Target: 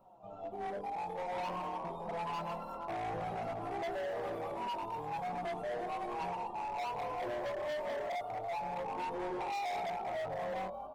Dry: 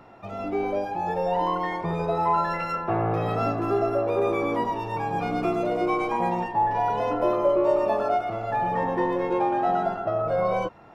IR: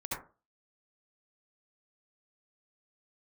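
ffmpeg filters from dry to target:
-filter_complex "[0:a]asettb=1/sr,asplit=3[link_01][link_02][link_03];[link_01]atrim=end=8.954[link_04];[link_02]atrim=start=8.95:end=9.81,asetpts=PTS-STARTPTS,afade=type=in:duration=0.004:curve=qsin,afade=type=out:start_time=0.856:duration=0.004:curve=qsin,aecho=1:1:2.5:0.56,atrim=end_sample=37926[link_05];[link_03]atrim=start=9.806[link_06];[link_04][link_05]acrossfade=duration=0.004:curve1=hsin:curve2=qsin[link_07];[link_07][link_06]acrossfade=duration=0.004:curve1=qsin:curve2=hsin,flanger=delay=5.2:depth=1.5:regen=14:speed=1.5:shape=sinusoidal,aemphasis=mode=production:type=50fm,asettb=1/sr,asplit=3[link_08][link_09][link_10];[link_08]atrim=end=4.894[link_11];[link_09]atrim=start=4.89:end=5.59,asetpts=PTS-STARTPTS,afade=type=in:duration=0.004:curve=qsin,afade=type=out:start_time=0.696:duration=0.004:curve=qsin,aeval=exprs='sgn(val(0))*max(abs(val(0))-0.00447,0)':channel_layout=same[link_12];[link_10]atrim=start=5.586[link_13];[link_11][link_12]acrossfade=duration=0.004:curve1=hsin:curve2=qsin[link_14];[link_14][link_13]acrossfade=duration=0.004:curve1=qsin:curve2=hsin,firequalizer=gain_entry='entry(210,0);entry(310,-3);entry(720,8);entry(1100,1);entry(1800,-24);entry(3200,-5);entry(5300,-16);entry(8400,-6)':delay=0.05:min_phase=1,asplit=6[link_15][link_16][link_17][link_18][link_19][link_20];[link_16]adelay=199,afreqshift=39,volume=-11dB[link_21];[link_17]adelay=398,afreqshift=78,volume=-17dB[link_22];[link_18]adelay=597,afreqshift=117,volume=-23dB[link_23];[link_19]adelay=796,afreqshift=156,volume=-29.1dB[link_24];[link_20]adelay=995,afreqshift=195,volume=-35.1dB[link_25];[link_15][link_21][link_22][link_23][link_24][link_25]amix=inputs=6:normalize=0,flanger=delay=15:depth=5.9:speed=0.52,volume=28dB,asoftclip=hard,volume=-28dB,volume=-7.5dB" -ar 48000 -c:a libopus -b:a 20k

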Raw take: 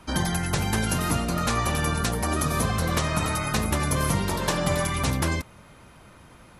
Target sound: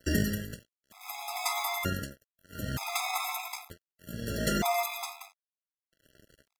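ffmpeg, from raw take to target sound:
ffmpeg -i in.wav -filter_complex "[0:a]asplit=2[link_01][link_02];[link_02]acompressor=threshold=-36dB:ratio=10,volume=1.5dB[link_03];[link_01][link_03]amix=inputs=2:normalize=0,tremolo=f=0.64:d=0.96,acrossover=split=1100[link_04][link_05];[link_04]acrusher=samples=15:mix=1:aa=0.000001:lfo=1:lforange=15:lforate=0.38[link_06];[link_06][link_05]amix=inputs=2:normalize=0,aeval=exprs='sgn(val(0))*max(abs(val(0))-0.0119,0)':channel_layout=same,asetrate=52444,aresample=44100,atempo=0.840896,afftfilt=real='re*gt(sin(2*PI*0.54*pts/sr)*(1-2*mod(floor(b*sr/1024/670),2)),0)':imag='im*gt(sin(2*PI*0.54*pts/sr)*(1-2*mod(floor(b*sr/1024/670),2)),0)':win_size=1024:overlap=0.75" out.wav

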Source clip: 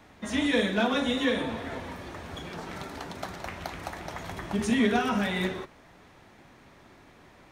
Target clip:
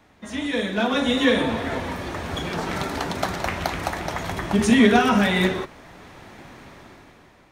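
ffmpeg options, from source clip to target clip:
ffmpeg -i in.wav -af "dynaudnorm=framelen=220:gausssize=9:maxgain=14.5dB,volume=-2dB" out.wav

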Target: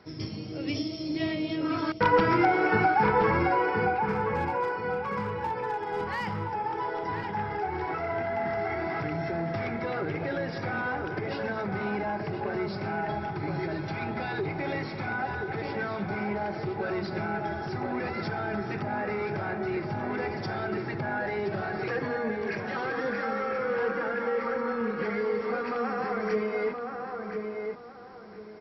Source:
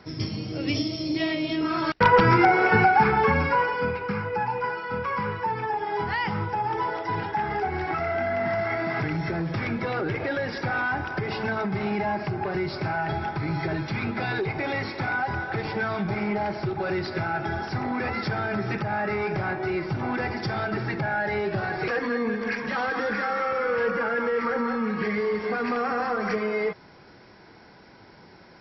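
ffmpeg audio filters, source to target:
ffmpeg -i in.wav -filter_complex "[0:a]equalizer=frequency=410:width_type=o:width=2:gain=3,bandreject=frequency=60:width_type=h:width=6,bandreject=frequency=120:width_type=h:width=6,bandreject=frequency=180:width_type=h:width=6,bandreject=frequency=240:width_type=h:width=6,asettb=1/sr,asplit=3[link_01][link_02][link_03];[link_01]atrim=end=4.094[link_04];[link_02]atrim=start=4.09:end=6.51,asetpts=PTS-STARTPTS,afade=type=in:duration=0.004:curve=qsin,afade=type=out:start_time=2.416:duration=0.004:curve=qsin,volume=20.5dB,asoftclip=hard,volume=-20.5dB[link_05];[link_03]atrim=start=6.506[link_06];[link_04][link_05]acrossfade=duration=0.004:curve1=hsin:curve2=qsin[link_07];[link_07][link_06]acrossfade=duration=0.004:curve1=qsin:curve2=hsin,asplit=2[link_08][link_09];[link_09]adelay=1023,lowpass=frequency=1800:poles=1,volume=-4dB,asplit=2[link_10][link_11];[link_11]adelay=1023,lowpass=frequency=1800:poles=1,volume=0.3,asplit=2[link_12][link_13];[link_13]adelay=1023,lowpass=frequency=1800:poles=1,volume=0.3,asplit=2[link_14][link_15];[link_15]adelay=1023,lowpass=frequency=1800:poles=1,volume=0.3[link_16];[link_08][link_10][link_12][link_14][link_16]amix=inputs=5:normalize=0,volume=-6.5dB" out.wav

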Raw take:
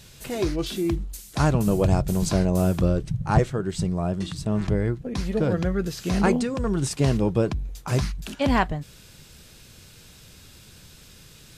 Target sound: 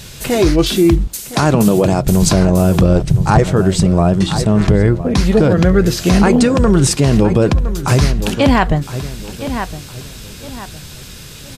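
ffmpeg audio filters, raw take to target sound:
ffmpeg -i in.wav -filter_complex "[0:a]asettb=1/sr,asplit=3[link_01][link_02][link_03];[link_01]atrim=end=1.074[link_04];[link_02]atrim=start=1.07:end=2.07,asetpts=PTS-STARTPTS,afade=type=in:duration=0.004:curve=qsin,afade=type=out:start_time=0.996:duration=0.004:curve=qsin,highpass=160[link_05];[link_03]atrim=start=2.066[link_06];[link_04][link_05]acrossfade=duration=0.004:curve1=hsin:curve2=qsin[link_07];[link_07][link_06]acrossfade=duration=0.004:curve1=qsin:curve2=hsin,asplit=2[link_08][link_09];[link_09]adelay=1012,lowpass=frequency=4900:poles=1,volume=-14.5dB,asplit=2[link_10][link_11];[link_11]adelay=1012,lowpass=frequency=4900:poles=1,volume=0.33,asplit=2[link_12][link_13];[link_13]adelay=1012,lowpass=frequency=4900:poles=1,volume=0.33[link_14];[link_08][link_10][link_12][link_14]amix=inputs=4:normalize=0,alimiter=level_in=15.5dB:limit=-1dB:release=50:level=0:latency=1,volume=-1dB" out.wav

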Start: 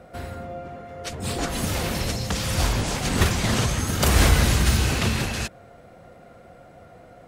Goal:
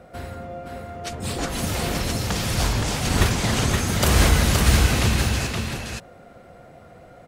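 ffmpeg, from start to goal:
ffmpeg -i in.wav -af "aecho=1:1:521:0.631" out.wav

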